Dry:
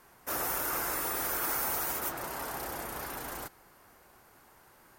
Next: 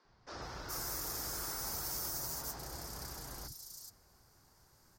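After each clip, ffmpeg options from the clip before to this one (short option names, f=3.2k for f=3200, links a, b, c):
-filter_complex "[0:a]firequalizer=gain_entry='entry(110,0);entry(250,-7);entry(530,-12);entry(2700,-15);entry(4800,4);entry(9800,-10)':delay=0.05:min_phase=1,acrossover=split=260|4300[a][b][c];[a]adelay=50[d];[c]adelay=420[e];[d][b][e]amix=inputs=3:normalize=0,volume=2dB"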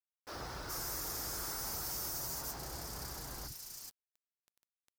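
-af "acrusher=bits=8:mix=0:aa=0.000001,asoftclip=type=tanh:threshold=-35.5dB,volume=2dB"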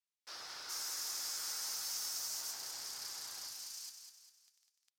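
-filter_complex "[0:a]bandpass=f=4.7k:t=q:w=0.8:csg=0,asplit=2[a][b];[b]aecho=0:1:200|400|600|800|1000:0.447|0.197|0.0865|0.0381|0.0167[c];[a][c]amix=inputs=2:normalize=0,volume=3.5dB"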